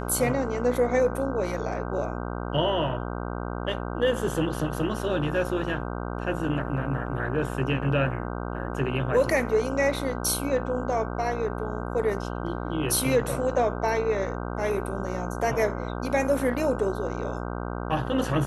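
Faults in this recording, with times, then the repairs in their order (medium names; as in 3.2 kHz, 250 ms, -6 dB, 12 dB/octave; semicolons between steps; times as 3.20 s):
buzz 60 Hz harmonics 26 -32 dBFS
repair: de-hum 60 Hz, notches 26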